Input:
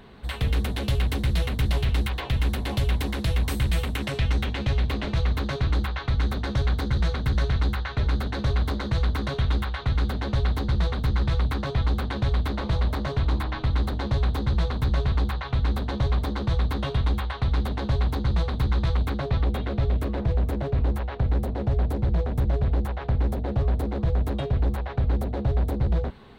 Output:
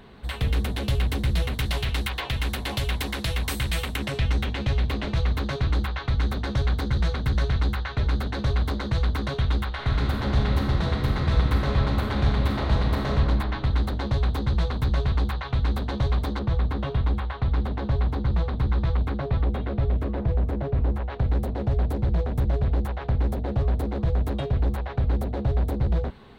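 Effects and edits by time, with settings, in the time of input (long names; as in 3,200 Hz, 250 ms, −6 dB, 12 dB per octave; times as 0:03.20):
0:01.53–0:03.96: tilt shelving filter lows −4 dB, about 660 Hz
0:09.68–0:13.12: thrown reverb, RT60 2.2 s, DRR 0 dB
0:16.39–0:21.10: low-pass filter 2,000 Hz 6 dB per octave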